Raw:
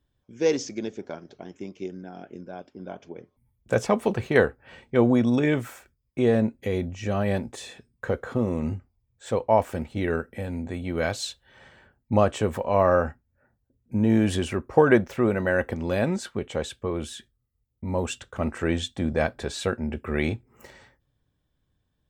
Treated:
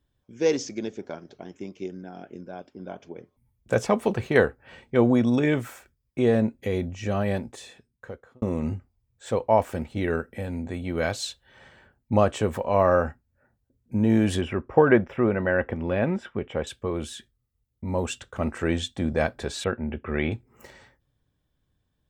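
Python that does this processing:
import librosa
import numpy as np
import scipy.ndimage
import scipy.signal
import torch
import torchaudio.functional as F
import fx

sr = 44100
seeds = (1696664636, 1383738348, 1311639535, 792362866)

y = fx.savgol(x, sr, points=25, at=(14.41, 16.67))
y = fx.ellip_lowpass(y, sr, hz=3400.0, order=4, stop_db=40, at=(19.64, 20.32))
y = fx.edit(y, sr, fx.fade_out_span(start_s=7.16, length_s=1.26), tone=tone)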